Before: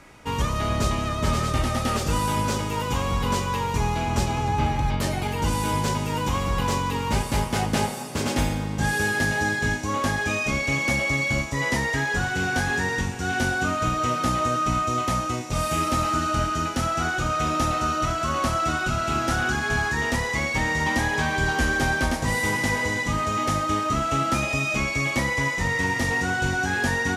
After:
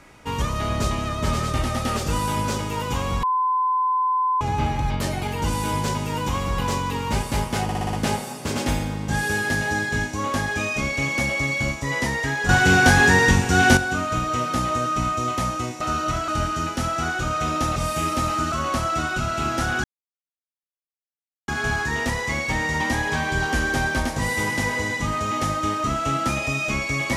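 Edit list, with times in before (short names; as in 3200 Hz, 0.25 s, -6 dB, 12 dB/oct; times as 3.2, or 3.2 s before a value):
3.23–4.41 bleep 1020 Hz -18 dBFS
7.63 stutter 0.06 s, 6 plays
12.19–13.47 gain +9.5 dB
15.51–16.27 swap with 17.75–18.22
19.54 insert silence 1.64 s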